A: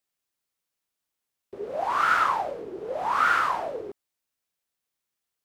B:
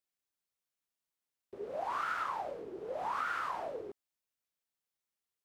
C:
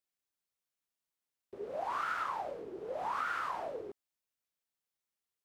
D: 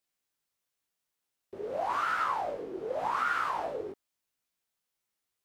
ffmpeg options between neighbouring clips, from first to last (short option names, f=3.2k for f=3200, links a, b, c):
-af "acompressor=threshold=-25dB:ratio=6,volume=-7.5dB"
-af anull
-af "flanger=delay=15.5:depth=5.6:speed=0.91,volume=8.5dB"